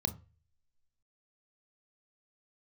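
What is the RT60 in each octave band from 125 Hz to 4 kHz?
0.55 s, 0.30 s, 0.35 s, 0.30 s, 0.40 s, 0.30 s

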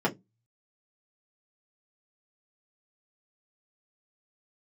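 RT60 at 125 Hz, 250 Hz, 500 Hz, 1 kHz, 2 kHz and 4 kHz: 0.60 s, 0.30 s, 0.20 s, 0.15 s, 0.10 s, 0.10 s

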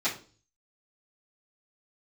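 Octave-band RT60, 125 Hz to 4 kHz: 0.70 s, 0.50 s, 0.45 s, 0.35 s, 0.30 s, 0.35 s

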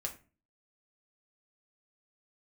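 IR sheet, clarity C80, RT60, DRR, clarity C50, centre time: 18.5 dB, 0.35 s, 1.0 dB, 13.0 dB, 11 ms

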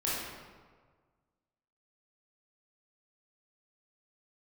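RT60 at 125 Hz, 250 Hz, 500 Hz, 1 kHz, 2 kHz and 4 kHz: 1.9 s, 1.6 s, 1.6 s, 1.5 s, 1.2 s, 0.95 s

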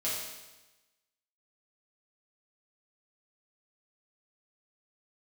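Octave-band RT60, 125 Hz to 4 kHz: 1.2 s, 1.1 s, 1.1 s, 1.1 s, 1.1 s, 1.1 s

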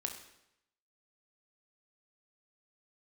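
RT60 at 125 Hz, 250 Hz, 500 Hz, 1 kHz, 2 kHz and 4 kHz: 0.85 s, 0.80 s, 0.85 s, 0.80 s, 0.80 s, 0.75 s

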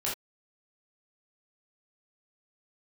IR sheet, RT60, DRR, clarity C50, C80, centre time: no single decay rate, -6.5 dB, 4.5 dB, 12.5 dB, 34 ms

